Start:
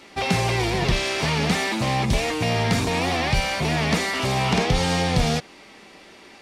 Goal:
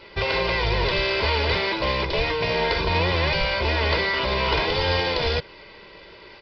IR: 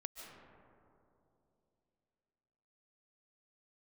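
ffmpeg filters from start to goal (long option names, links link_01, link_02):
-af "afftfilt=real='re*lt(hypot(re,im),0.398)':imag='im*lt(hypot(re,im),0.398)':win_size=1024:overlap=0.75,lowshelf=frequency=100:gain=7.5,aresample=11025,acrusher=bits=3:mode=log:mix=0:aa=0.000001,aresample=44100,aecho=1:1:2:0.71"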